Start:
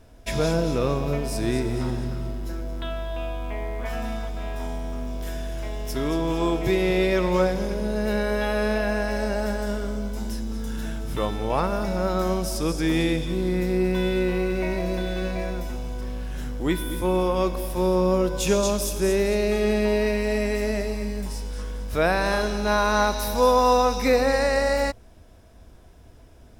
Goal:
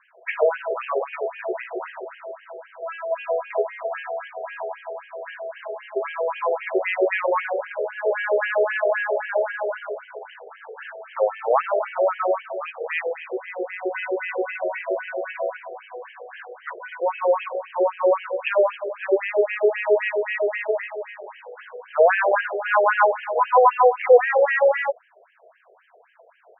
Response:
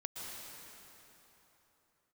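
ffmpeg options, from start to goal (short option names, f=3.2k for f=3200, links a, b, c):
-filter_complex "[0:a]asplit=3[a][b][c];[a]afade=t=out:st=3.1:d=0.02[d];[b]equalizer=f=450:t=o:w=0.85:g=13.5,afade=t=in:st=3.1:d=0.02,afade=t=out:st=3.61:d=0.02[e];[c]afade=t=in:st=3.61:d=0.02[f];[d][e][f]amix=inputs=3:normalize=0,afftfilt=real='re*between(b*sr/1024,520*pow(2300/520,0.5+0.5*sin(2*PI*3.8*pts/sr))/1.41,520*pow(2300/520,0.5+0.5*sin(2*PI*3.8*pts/sr))*1.41)':imag='im*between(b*sr/1024,520*pow(2300/520,0.5+0.5*sin(2*PI*3.8*pts/sr))/1.41,520*pow(2300/520,0.5+0.5*sin(2*PI*3.8*pts/sr))*1.41)':win_size=1024:overlap=0.75,volume=9dB"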